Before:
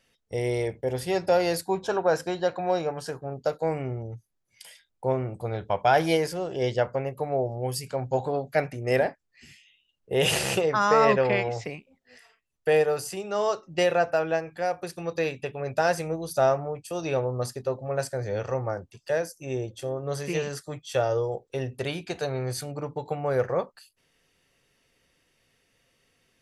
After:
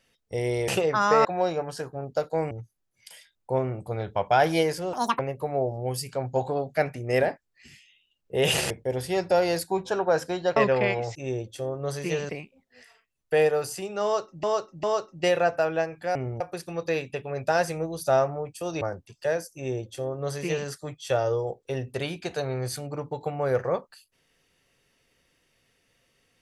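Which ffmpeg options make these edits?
-filter_complex "[0:a]asplit=15[s0][s1][s2][s3][s4][s5][s6][s7][s8][s9][s10][s11][s12][s13][s14];[s0]atrim=end=0.682[s15];[s1]atrim=start=10.478:end=11.052[s16];[s2]atrim=start=2.538:end=3.802[s17];[s3]atrim=start=4.048:end=6.474[s18];[s4]atrim=start=6.47:end=6.97,asetpts=PTS-STARTPTS,asetrate=83790,aresample=44100,atrim=end_sample=11605,asetpts=PTS-STARTPTS[s19];[s5]atrim=start=6.966:end=10.482[s20];[s6]atrim=start=0.678:end=2.542[s21];[s7]atrim=start=11.048:end=11.642[s22];[s8]atrim=start=19.388:end=20.532[s23];[s9]atrim=start=11.638:end=13.782[s24];[s10]atrim=start=13.378:end=13.782[s25];[s11]atrim=start=13.378:end=14.702[s26];[s12]atrim=start=3.798:end=4.052[s27];[s13]atrim=start=14.698:end=17.112[s28];[s14]atrim=start=18.658[s29];[s15][s16]acrossfade=d=0.004:c1=hsin:c2=hsin[s30];[s30][s17]acrossfade=d=0.004:c1=hsin:c2=hsin[s31];[s31][s18]acrossfade=d=0.004:c1=hsin:c2=hsin[s32];[s32][s19]acrossfade=d=0.004:c1=hsin:c2=hsin[s33];[s33][s20]acrossfade=d=0.004:c1=hsin:c2=hsin[s34];[s34][s21]acrossfade=d=0.004:c1=hsin:c2=hsin[s35];[s35][s22]acrossfade=d=0.004:c1=hsin:c2=hsin[s36];[s36][s23]acrossfade=d=0.004:c1=hsin:c2=hsin[s37];[s37][s24]acrossfade=d=0.004:c1=hsin:c2=hsin[s38];[s38][s25]acrossfade=d=0.004:c1=hsin:c2=hsin[s39];[s39][s26]acrossfade=d=0.004:c1=hsin:c2=hsin[s40];[s40][s27]acrossfade=d=0.004:c1=hsin:c2=hsin[s41];[s41][s28]acrossfade=d=0.004:c1=hsin:c2=hsin[s42];[s42][s29]acrossfade=d=0.004:c1=hsin:c2=hsin"

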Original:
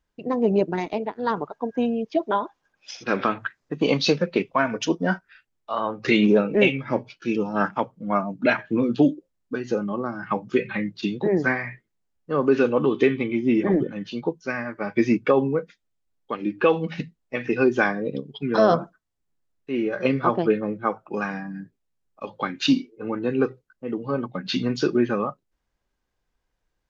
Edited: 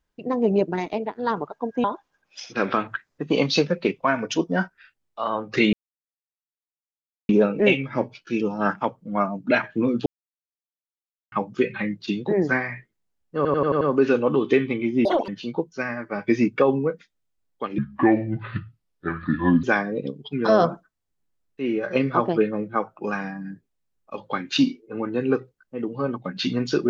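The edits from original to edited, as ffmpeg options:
-filter_complex "[0:a]asplit=14[s0][s1][s2][s3][s4][s5][s6][s7][s8][s9][s10][s11][s12][s13];[s0]atrim=end=1.842[s14];[s1]atrim=start=2.348:end=6.24,asetpts=PTS-STARTPTS,afade=t=out:st=3.888:d=0.004:c=hsin,apad=pad_dur=1.56[s15];[s2]atrim=start=6.24:end=9.01,asetpts=PTS-STARTPTS,afade=t=in:d=0.004:c=hsin,afade=t=out:st=2.766:d=0.004:c=hsin[s16];[s3]atrim=start=9.01:end=10.27,asetpts=PTS-STARTPTS,volume=0[s17];[s4]atrim=start=10.27:end=12.402,asetpts=PTS-STARTPTS,afade=t=in:d=0.004:c=hsin[s18];[s5]atrim=start=12.308:end=12.402[s19];[s6]atrim=start=12.308:end=12.402[s20];[s7]atrim=start=12.308:end=12.402[s21];[s8]atrim=start=12.308:end=12.402[s22];[s9]atrim=start=12.308:end=13.554[s23];[s10]atrim=start=13.55:end=13.97,asetpts=PTS-STARTPTS,asetrate=79821,aresample=44100,atrim=end_sample=10233,asetpts=PTS-STARTPTS[s24];[s11]atrim=start=13.966:end=16.474[s25];[s12]atrim=start=16.47:end=17.73,asetpts=PTS-STARTPTS,asetrate=29988,aresample=44100[s26];[s13]atrim=start=17.726[s27];[s15][s16][s17][s18]concat=n=4:v=0:a=1[s28];[s14][s28]acrossfade=d=0.004:c1=hsin:c2=hsin[s29];[s29][s19]acrossfade=d=0.004:c1=hsin:c2=hsin[s30];[s30][s20]acrossfade=d=0.004:c1=hsin:c2=hsin[s31];[s31][s21]acrossfade=d=0.004:c1=hsin:c2=hsin[s32];[s32][s22]acrossfade=d=0.004:c1=hsin:c2=hsin[s33];[s33][s23]acrossfade=d=0.004:c1=hsin:c2=hsin[s34];[s34][s24]acrossfade=d=0.004:c1=hsin:c2=hsin[s35];[s35][s25]acrossfade=d=0.004:c1=hsin:c2=hsin[s36];[s36][s26]acrossfade=d=0.004:c1=hsin:c2=hsin[s37];[s37][s27]acrossfade=d=0.004:c1=hsin:c2=hsin"

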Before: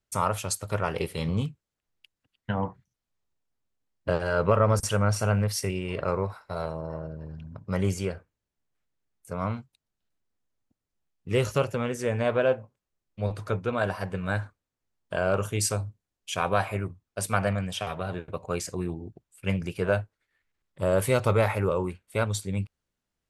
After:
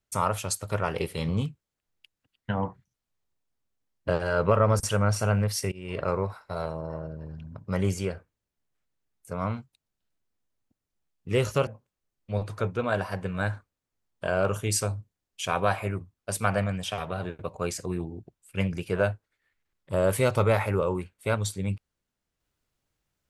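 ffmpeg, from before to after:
-filter_complex "[0:a]asplit=3[s0][s1][s2];[s0]atrim=end=5.72,asetpts=PTS-STARTPTS,afade=t=out:st=5.716:d=0.004:c=hsin:silence=0.0630957[s3];[s1]atrim=start=5.72:end=11.672,asetpts=PTS-STARTPTS,afade=t=in:d=0.25:silence=0.0630957[s4];[s2]atrim=start=12.558[s5];[s3][s4]concat=n=2:v=0:a=1[s6];[s6][s5]acrossfade=d=0.004:c1=hsin:c2=hsin"

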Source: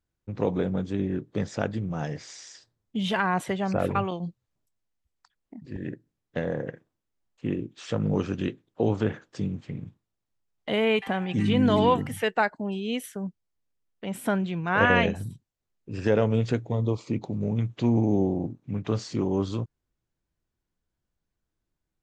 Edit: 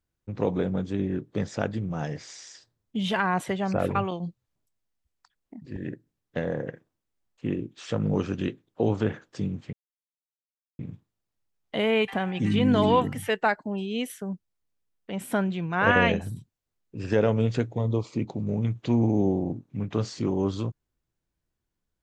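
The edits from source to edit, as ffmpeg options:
-filter_complex "[0:a]asplit=2[s0][s1];[s0]atrim=end=9.73,asetpts=PTS-STARTPTS,afade=t=out:st=9.726:d=0.004:c=hsin,apad=pad_dur=1.06[s2];[s1]atrim=start=9.73,asetpts=PTS-STARTPTS,afade=t=in:d=0.004:c=hsin[s3];[s2][s3]concat=n=2:v=0:a=1"

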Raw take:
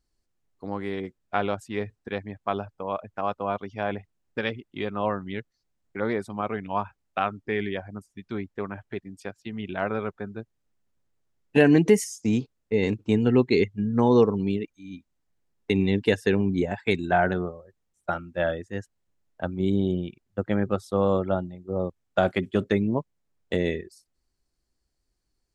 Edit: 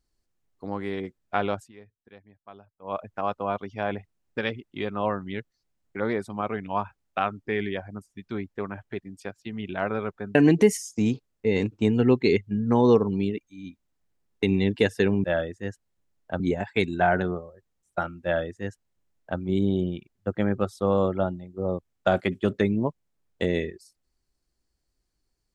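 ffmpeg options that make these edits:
-filter_complex "[0:a]asplit=6[s0][s1][s2][s3][s4][s5];[s0]atrim=end=1.72,asetpts=PTS-STARTPTS,afade=t=out:st=1.58:d=0.14:silence=0.112202[s6];[s1]atrim=start=1.72:end=2.81,asetpts=PTS-STARTPTS,volume=0.112[s7];[s2]atrim=start=2.81:end=10.352,asetpts=PTS-STARTPTS,afade=t=in:d=0.14:silence=0.112202[s8];[s3]atrim=start=11.618:end=16.512[s9];[s4]atrim=start=18.338:end=19.502[s10];[s5]atrim=start=16.508[s11];[s6][s7][s8]concat=n=3:v=0:a=1[s12];[s12][s9]acrossfade=d=0.004:c1=hsin:c2=hsin[s13];[s13][s10]acrossfade=d=0.004:c1=hsin:c2=hsin[s14];[s14][s11]acrossfade=d=0.004:c1=hsin:c2=hsin"

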